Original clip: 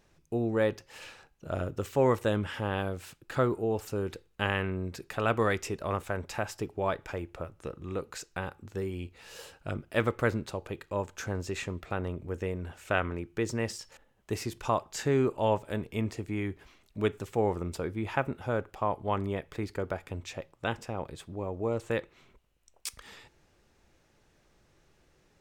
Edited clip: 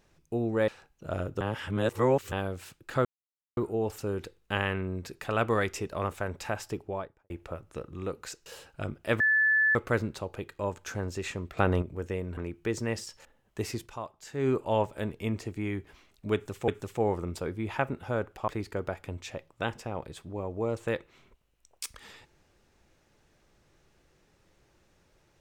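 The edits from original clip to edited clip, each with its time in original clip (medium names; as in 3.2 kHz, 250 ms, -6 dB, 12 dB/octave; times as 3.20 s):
0.68–1.09 s: delete
1.82–2.73 s: reverse
3.46 s: insert silence 0.52 s
6.60–7.19 s: studio fade out
8.35–9.33 s: delete
10.07 s: add tone 1.74 kHz -20.5 dBFS 0.55 s
11.89–12.14 s: gain +8 dB
12.69–13.09 s: delete
14.51–15.21 s: dip -10.5 dB, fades 0.15 s
17.06–17.40 s: loop, 2 plays
18.86–19.51 s: delete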